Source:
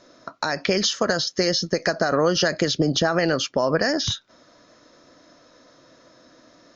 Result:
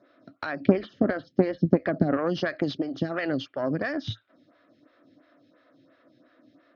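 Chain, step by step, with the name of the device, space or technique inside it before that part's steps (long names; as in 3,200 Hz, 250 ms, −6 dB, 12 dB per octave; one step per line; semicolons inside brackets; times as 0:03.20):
0:00.60–0:02.17: spectral tilt −4.5 dB per octave
vibe pedal into a guitar amplifier (phaser with staggered stages 2.9 Hz; tube saturation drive 7 dB, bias 0.75; loudspeaker in its box 100–3,600 Hz, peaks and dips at 110 Hz +7 dB, 280 Hz +7 dB, 460 Hz −5 dB, 940 Hz −9 dB)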